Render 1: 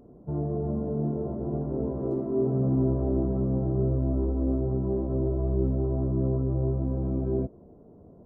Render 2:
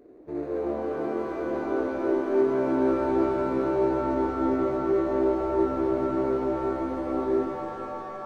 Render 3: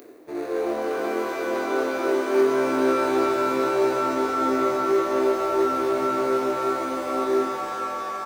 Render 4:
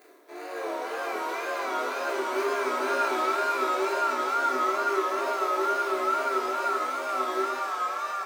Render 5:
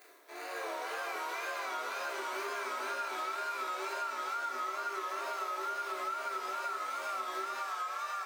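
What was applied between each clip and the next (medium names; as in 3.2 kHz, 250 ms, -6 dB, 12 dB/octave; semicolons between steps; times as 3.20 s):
median filter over 41 samples; resonant low shelf 240 Hz -11 dB, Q 3; pitch-shifted reverb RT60 3.1 s, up +7 st, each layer -2 dB, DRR 5 dB; trim -1.5 dB
reverse; upward compressor, threshold -34 dBFS; reverse; tilt EQ +4.5 dB/octave; doubling 23 ms -6 dB; trim +6 dB
high-pass 760 Hz 12 dB/octave; wow and flutter 96 cents; simulated room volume 870 m³, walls furnished, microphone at 3 m; trim -3.5 dB
high-pass 1.2 kHz 6 dB/octave; compression, threshold -36 dBFS, peak gain reduction 11 dB; trim +1.5 dB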